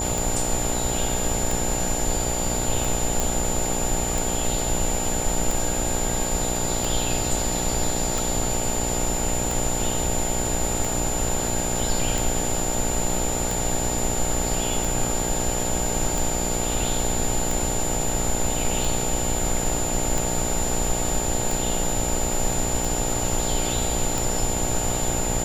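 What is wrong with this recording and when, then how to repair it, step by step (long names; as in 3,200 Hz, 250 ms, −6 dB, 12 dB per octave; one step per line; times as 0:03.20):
mains buzz 60 Hz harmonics 15 −29 dBFS
scratch tick 45 rpm
whistle 7,100 Hz −27 dBFS
0:03.20: click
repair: click removal
hum removal 60 Hz, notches 15
notch filter 7,100 Hz, Q 30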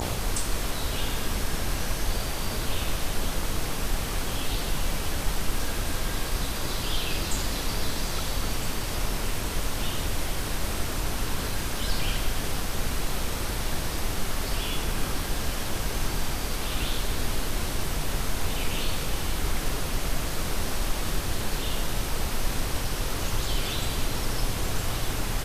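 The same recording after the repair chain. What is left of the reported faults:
none of them is left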